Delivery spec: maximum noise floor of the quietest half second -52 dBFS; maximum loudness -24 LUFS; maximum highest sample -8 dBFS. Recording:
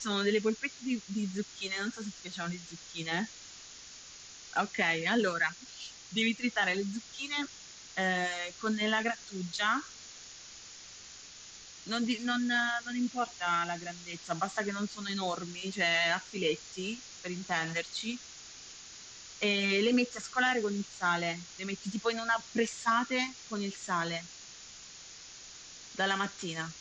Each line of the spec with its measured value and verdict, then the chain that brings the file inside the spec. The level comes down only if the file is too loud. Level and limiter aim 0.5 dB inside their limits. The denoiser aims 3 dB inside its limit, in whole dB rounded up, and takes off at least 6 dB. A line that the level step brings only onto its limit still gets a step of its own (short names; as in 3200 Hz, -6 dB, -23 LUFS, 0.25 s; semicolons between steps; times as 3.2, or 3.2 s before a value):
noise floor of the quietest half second -50 dBFS: fail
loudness -32.5 LUFS: OK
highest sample -15.5 dBFS: OK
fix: denoiser 6 dB, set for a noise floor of -50 dBFS